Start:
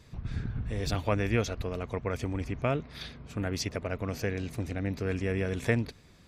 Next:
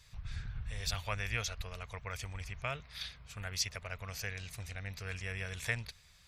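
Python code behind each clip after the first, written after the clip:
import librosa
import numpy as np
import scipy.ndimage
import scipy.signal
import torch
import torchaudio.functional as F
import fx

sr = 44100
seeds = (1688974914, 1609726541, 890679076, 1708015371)

y = fx.tone_stack(x, sr, knobs='10-0-10')
y = y * 10.0 ** (2.5 / 20.0)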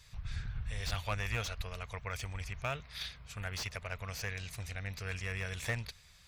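y = fx.slew_limit(x, sr, full_power_hz=51.0)
y = y * 10.0 ** (2.0 / 20.0)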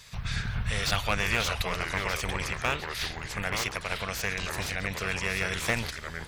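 y = fx.spec_clip(x, sr, under_db=13)
y = fx.echo_pitch(y, sr, ms=377, semitones=-3, count=2, db_per_echo=-6.0)
y = y * 10.0 ** (7.5 / 20.0)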